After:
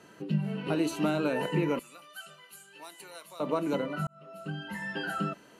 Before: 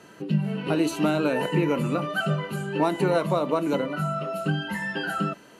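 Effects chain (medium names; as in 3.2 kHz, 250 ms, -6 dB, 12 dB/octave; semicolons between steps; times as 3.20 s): 1.79–3.40 s: differentiator; 4.07–5.00 s: fade in; trim -5 dB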